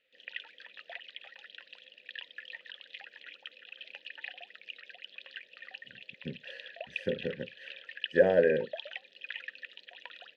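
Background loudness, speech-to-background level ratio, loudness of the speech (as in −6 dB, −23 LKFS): −44.5 LKFS, 16.0 dB, −28.5 LKFS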